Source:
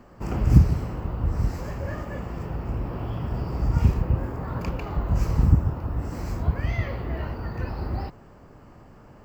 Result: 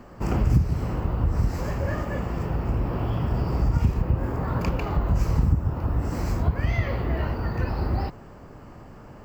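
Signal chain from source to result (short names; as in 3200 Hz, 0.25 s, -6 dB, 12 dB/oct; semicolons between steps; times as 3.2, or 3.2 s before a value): compressor 3:1, threshold -23 dBFS, peak gain reduction 11.5 dB; gain +4.5 dB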